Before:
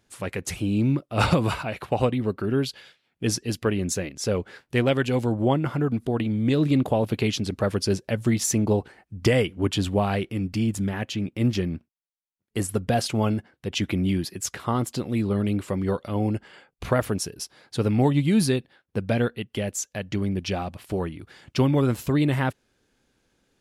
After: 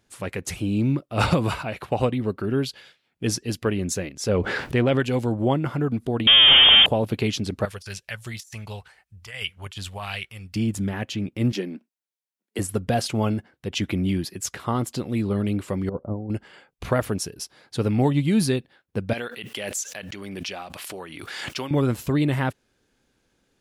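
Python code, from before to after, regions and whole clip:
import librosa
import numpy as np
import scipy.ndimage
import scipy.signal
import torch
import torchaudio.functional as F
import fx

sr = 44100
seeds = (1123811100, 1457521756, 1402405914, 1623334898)

y = fx.chain(x, sr, fx.high_shelf(hz=5200.0, db=-11.5),
    fx.env_flatten(amount_pct=70), at=(4.29, 5.0))
y = fx.chain(y, sr, fx.zero_step(step_db=-27.0),
    fx.leveller(passes=5),
    fx.freq_invert(carrier_hz=3400), at=(6.27, 6.86))
y = fx.chain(y, sr, fx.tone_stack(knobs='10-0-10'),
    fx.over_compress(threshold_db=-35.0, ratio=-0.5),
    fx.bell_lfo(hz=1.4, low_hz=270.0, high_hz=2900.0, db=8), at=(7.65, 10.56))
y = fx.chain(y, sr, fx.steep_highpass(hz=200.0, slope=48),
    fx.notch(hz=1200.0, q=7.3), at=(11.52, 12.59))
y = fx.chain(y, sr, fx.gaussian_blur(sigma=10.0),
    fx.over_compress(threshold_db=-28.0, ratio=-0.5), at=(15.89, 16.3))
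y = fx.chain(y, sr, fx.highpass(hz=1200.0, slope=6),
    fx.pre_swell(db_per_s=23.0), at=(19.13, 21.71))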